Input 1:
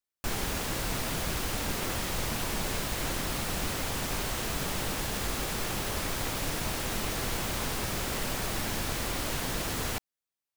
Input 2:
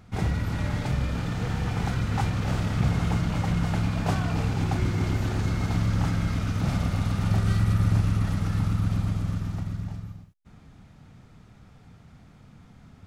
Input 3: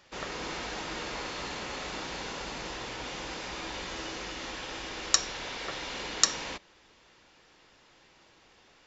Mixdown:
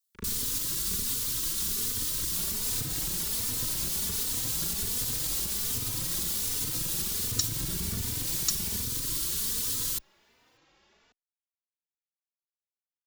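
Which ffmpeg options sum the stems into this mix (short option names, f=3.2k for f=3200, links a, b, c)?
-filter_complex "[0:a]aexciter=amount=2.5:drive=8.8:freq=3.3k,volume=-1.5dB[a];[1:a]aemphasis=mode=reproduction:type=cd,acrusher=bits=2:mix=0:aa=0.5,volume=-1dB[b];[2:a]adelay=2250,volume=-2dB[c];[a][b]amix=inputs=2:normalize=0,asuperstop=centerf=700:order=8:qfactor=1.7,alimiter=limit=-17dB:level=0:latency=1:release=119,volume=0dB[d];[c][d]amix=inputs=2:normalize=0,acrossover=split=280|3000[e][f][g];[f]acompressor=threshold=-43dB:ratio=6[h];[e][h][g]amix=inputs=3:normalize=0,aeval=exprs='0.562*(cos(1*acos(clip(val(0)/0.562,-1,1)))-cos(1*PI/2))+0.00891*(cos(6*acos(clip(val(0)/0.562,-1,1)))-cos(6*PI/2))':c=same,asplit=2[i][j];[j]adelay=3.2,afreqshift=1.3[k];[i][k]amix=inputs=2:normalize=1"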